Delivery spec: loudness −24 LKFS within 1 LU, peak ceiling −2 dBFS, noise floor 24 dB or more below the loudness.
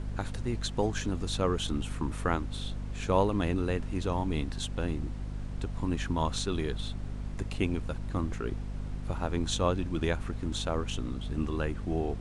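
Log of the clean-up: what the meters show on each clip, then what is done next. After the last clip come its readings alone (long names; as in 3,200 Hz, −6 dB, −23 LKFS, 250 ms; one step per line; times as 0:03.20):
mains hum 50 Hz; hum harmonics up to 250 Hz; level of the hum −34 dBFS; background noise floor −38 dBFS; target noise floor −57 dBFS; integrated loudness −32.5 LKFS; sample peak −12.0 dBFS; target loudness −24.0 LKFS
→ hum removal 50 Hz, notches 5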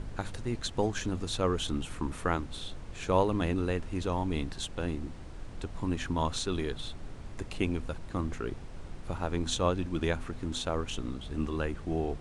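mains hum none found; background noise floor −44 dBFS; target noise floor −58 dBFS
→ noise reduction from a noise print 14 dB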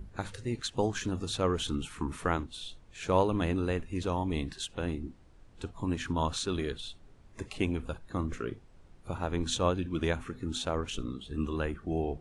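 background noise floor −57 dBFS; integrated loudness −33.0 LKFS; sample peak −12.5 dBFS; target loudness −24.0 LKFS
→ level +9 dB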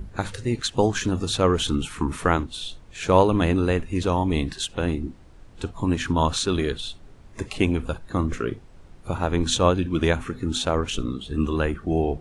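integrated loudness −24.0 LKFS; sample peak −3.5 dBFS; background noise floor −48 dBFS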